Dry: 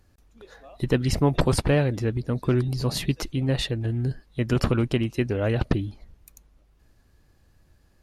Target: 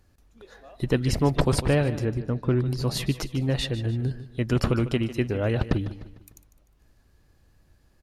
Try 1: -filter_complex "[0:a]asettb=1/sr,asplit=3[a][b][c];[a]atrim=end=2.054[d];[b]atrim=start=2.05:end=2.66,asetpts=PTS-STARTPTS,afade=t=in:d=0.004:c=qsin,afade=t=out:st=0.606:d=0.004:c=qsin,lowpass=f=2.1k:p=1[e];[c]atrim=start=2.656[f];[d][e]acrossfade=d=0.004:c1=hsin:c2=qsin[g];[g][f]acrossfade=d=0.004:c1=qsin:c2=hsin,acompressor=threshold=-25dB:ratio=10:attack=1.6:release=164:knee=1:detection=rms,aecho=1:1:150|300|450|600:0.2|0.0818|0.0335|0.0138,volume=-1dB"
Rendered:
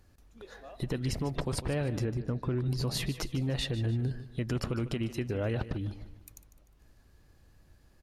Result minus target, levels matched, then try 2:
compressor: peak gain reduction +14.5 dB
-filter_complex "[0:a]asettb=1/sr,asplit=3[a][b][c];[a]atrim=end=2.054[d];[b]atrim=start=2.05:end=2.66,asetpts=PTS-STARTPTS,afade=t=in:d=0.004:c=qsin,afade=t=out:st=0.606:d=0.004:c=qsin,lowpass=f=2.1k:p=1[e];[c]atrim=start=2.656[f];[d][e]acrossfade=d=0.004:c1=hsin:c2=qsin[g];[g][f]acrossfade=d=0.004:c1=qsin:c2=hsin,aecho=1:1:150|300|450|600:0.2|0.0818|0.0335|0.0138,volume=-1dB"

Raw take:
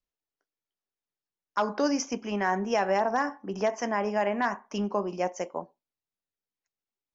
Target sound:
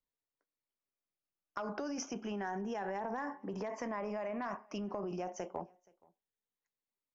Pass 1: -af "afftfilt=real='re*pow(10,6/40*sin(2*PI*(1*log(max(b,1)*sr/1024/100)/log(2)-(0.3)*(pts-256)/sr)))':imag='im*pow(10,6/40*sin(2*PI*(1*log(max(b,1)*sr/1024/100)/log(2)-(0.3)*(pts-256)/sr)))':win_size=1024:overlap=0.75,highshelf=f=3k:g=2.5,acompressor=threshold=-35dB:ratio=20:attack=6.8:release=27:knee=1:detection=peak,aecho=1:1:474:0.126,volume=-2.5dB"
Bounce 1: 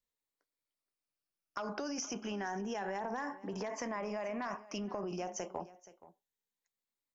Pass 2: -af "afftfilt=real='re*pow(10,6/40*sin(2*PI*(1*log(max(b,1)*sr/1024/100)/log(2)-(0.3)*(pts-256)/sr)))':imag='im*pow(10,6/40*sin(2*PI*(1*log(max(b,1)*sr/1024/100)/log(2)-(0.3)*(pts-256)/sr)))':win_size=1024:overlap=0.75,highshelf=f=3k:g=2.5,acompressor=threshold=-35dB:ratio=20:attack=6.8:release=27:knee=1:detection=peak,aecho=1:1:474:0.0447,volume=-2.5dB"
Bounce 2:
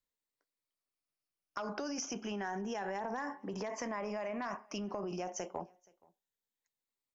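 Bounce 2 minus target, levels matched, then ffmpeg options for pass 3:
8000 Hz band +5.0 dB
-af "afftfilt=real='re*pow(10,6/40*sin(2*PI*(1*log(max(b,1)*sr/1024/100)/log(2)-(0.3)*(pts-256)/sr)))':imag='im*pow(10,6/40*sin(2*PI*(1*log(max(b,1)*sr/1024/100)/log(2)-(0.3)*(pts-256)/sr)))':win_size=1024:overlap=0.75,highshelf=f=3k:g=-8,acompressor=threshold=-35dB:ratio=20:attack=6.8:release=27:knee=1:detection=peak,aecho=1:1:474:0.0447,volume=-2.5dB"

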